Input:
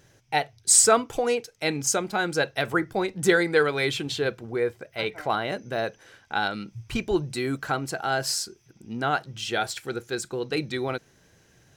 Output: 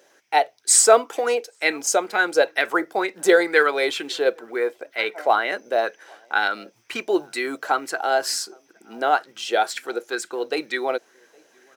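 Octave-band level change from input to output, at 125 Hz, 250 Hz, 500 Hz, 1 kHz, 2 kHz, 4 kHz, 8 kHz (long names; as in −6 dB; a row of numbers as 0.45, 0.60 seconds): below −20 dB, −0.5 dB, +5.0 dB, +6.0 dB, +5.0 dB, +2.0 dB, +1.5 dB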